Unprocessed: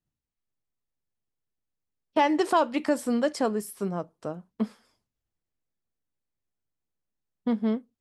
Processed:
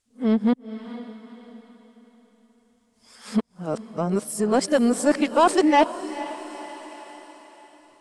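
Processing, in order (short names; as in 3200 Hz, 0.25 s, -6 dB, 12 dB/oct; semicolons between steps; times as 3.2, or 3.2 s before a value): whole clip reversed; bell 9100 Hz +14 dB 1 oct; in parallel at -4 dB: soft clip -21 dBFS, distortion -12 dB; on the sum: air absorption 68 m; diffused feedback echo 0.471 s, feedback 44%, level -15 dB; mismatched tape noise reduction encoder only; gain +2.5 dB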